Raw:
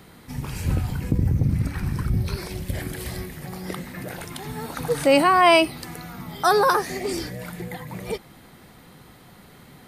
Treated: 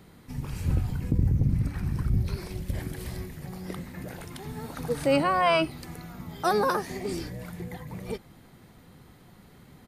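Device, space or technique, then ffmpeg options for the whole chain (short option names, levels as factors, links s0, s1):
octave pedal: -filter_complex "[0:a]asettb=1/sr,asplit=3[s0][s1][s2];[s0]atrim=end=5.164[s3];[s1]atrim=start=5.16:end=5.71,asetpts=PTS-STARTPTS,afade=t=in:d=0.004:c=qsin,afade=t=out:st=0.546:d=0.004:c=qsin,acrossover=split=6200[s4][s5];[s5]acompressor=threshold=0.00631:ratio=4:attack=1:release=60[s6];[s4][s6]amix=inputs=2:normalize=0[s7];[s2]atrim=start=5.706[s8];[s3][s7]acrossfade=d=0.004:c1=hsin:c2=qsin[s9];[s9][s8]acrossfade=d=0.004:c1=qsin:c2=hsin,lowshelf=f=410:g=6,asplit=2[s10][s11];[s11]asetrate=22050,aresample=44100,atempo=2,volume=0.355[s12];[s10][s12]amix=inputs=2:normalize=0,volume=0.376"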